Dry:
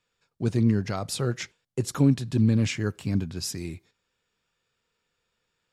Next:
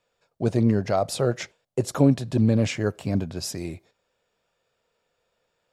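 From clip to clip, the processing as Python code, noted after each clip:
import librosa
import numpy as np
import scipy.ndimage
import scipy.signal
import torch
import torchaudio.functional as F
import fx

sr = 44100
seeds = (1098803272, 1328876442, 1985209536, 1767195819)

y = fx.peak_eq(x, sr, hz=620.0, db=14.0, octaves=0.96)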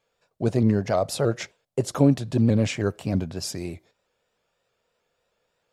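y = fx.vibrato_shape(x, sr, shape='saw_up', rate_hz=3.2, depth_cents=100.0)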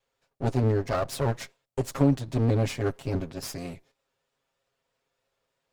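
y = fx.lower_of_two(x, sr, delay_ms=7.4)
y = F.gain(torch.from_numpy(y), -3.5).numpy()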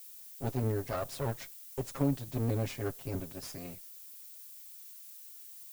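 y = fx.dmg_noise_colour(x, sr, seeds[0], colour='violet', level_db=-42.0)
y = F.gain(torch.from_numpy(y), -8.0).numpy()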